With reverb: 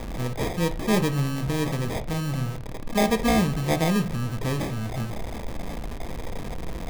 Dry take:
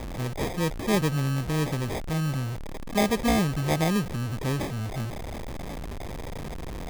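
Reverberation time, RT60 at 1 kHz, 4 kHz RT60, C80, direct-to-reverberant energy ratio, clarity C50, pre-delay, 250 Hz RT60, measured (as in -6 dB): 0.45 s, 0.45 s, 0.35 s, 21.0 dB, 8.5 dB, 16.5 dB, 4 ms, 0.70 s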